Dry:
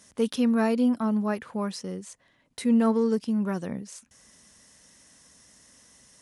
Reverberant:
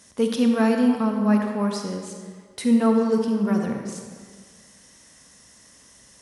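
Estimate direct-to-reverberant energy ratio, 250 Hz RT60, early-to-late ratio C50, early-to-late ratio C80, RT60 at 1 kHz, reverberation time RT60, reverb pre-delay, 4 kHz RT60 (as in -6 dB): 3.0 dB, 1.8 s, 3.5 dB, 5.0 dB, 1.8 s, 1.8 s, 37 ms, 1.2 s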